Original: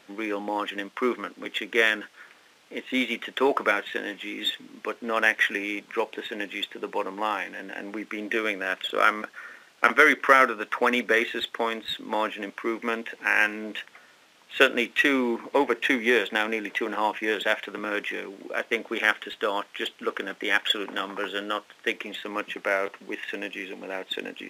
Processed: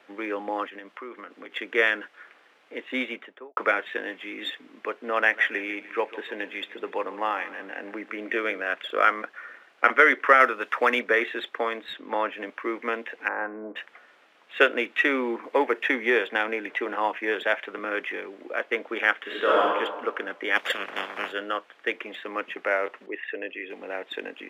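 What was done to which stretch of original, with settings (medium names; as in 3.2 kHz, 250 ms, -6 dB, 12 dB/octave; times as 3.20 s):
0.65–1.56 s: compression 4:1, threshold -37 dBFS
2.96–3.57 s: studio fade out
5.19–8.61 s: feedback delay 149 ms, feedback 45%, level -16.5 dB
10.40–10.99 s: treble shelf 3.3 kHz +8 dB
11.93–12.33 s: treble shelf 7.5 kHz -11.5 dB
13.28–13.76 s: low-pass 1.2 kHz 24 dB/octave
15.43–15.84 s: treble shelf 7.6 kHz +6.5 dB
19.22–19.64 s: reverb throw, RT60 1.3 s, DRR -7 dB
20.55–21.31 s: spectral peaks clipped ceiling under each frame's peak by 21 dB
23.06–23.70 s: resonances exaggerated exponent 1.5
whole clip: three-band isolator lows -15 dB, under 280 Hz, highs -14 dB, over 2.9 kHz; band-stop 930 Hz, Q 20; trim +1 dB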